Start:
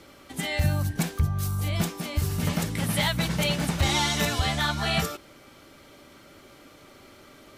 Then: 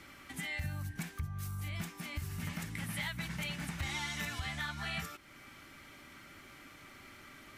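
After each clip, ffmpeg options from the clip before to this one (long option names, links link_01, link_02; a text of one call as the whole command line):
ffmpeg -i in.wav -af "equalizer=frequency=500:width_type=o:width=1:gain=-10,equalizer=frequency=2000:width_type=o:width=1:gain=7,equalizer=frequency=4000:width_type=o:width=1:gain=-3,acompressor=threshold=-42dB:ratio=2,volume=-3dB" out.wav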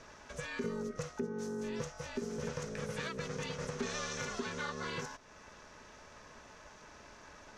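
ffmpeg -i in.wav -af "aeval=exprs='val(0)*sin(2*PI*320*n/s)':channel_layout=same,lowpass=frequency=6100:width_type=q:width=4.3,highshelf=frequency=1700:width_type=q:width=1.5:gain=-6.5,volume=3.5dB" out.wav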